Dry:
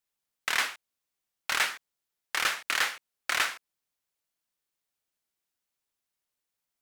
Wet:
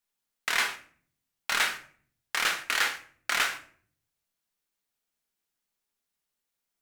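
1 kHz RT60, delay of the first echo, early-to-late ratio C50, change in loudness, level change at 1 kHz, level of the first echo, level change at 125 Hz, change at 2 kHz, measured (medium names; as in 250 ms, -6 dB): 0.45 s, no echo, 12.5 dB, +1.0 dB, +1.0 dB, no echo, no reading, +1.0 dB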